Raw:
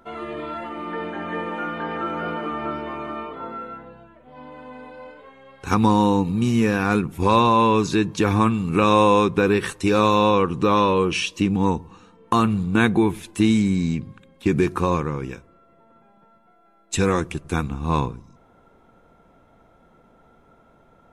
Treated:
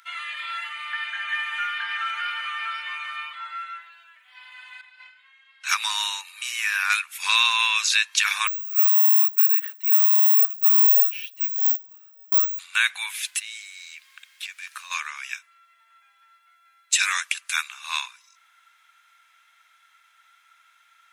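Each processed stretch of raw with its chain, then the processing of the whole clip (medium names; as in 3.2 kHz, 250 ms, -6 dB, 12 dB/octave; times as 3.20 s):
4.81–5.69 s: gate -40 dBFS, range -9 dB + distance through air 52 m
6.21–6.90 s: high-pass 510 Hz + peaking EQ 4.6 kHz -6.5 dB 2.2 oct
8.47–12.59 s: band-pass filter 640 Hz, Q 3.5 + careless resampling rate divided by 2×, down none, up zero stuff
13.16–14.90 s: compression 10:1, threshold -30 dBFS + added noise brown -49 dBFS
whole clip: inverse Chebyshev high-pass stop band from 400 Hz, stop band 70 dB; loudness maximiser +17.5 dB; trim -6 dB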